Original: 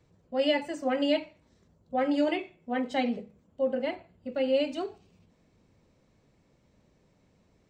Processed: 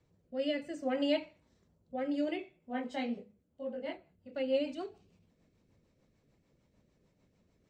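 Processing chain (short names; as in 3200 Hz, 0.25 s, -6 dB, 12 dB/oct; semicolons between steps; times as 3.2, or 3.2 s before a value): rotary speaker horn 0.6 Hz, later 6.7 Hz, at 3.22; 2.44–4.31 detuned doubles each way 25 cents -> 42 cents; gain -4 dB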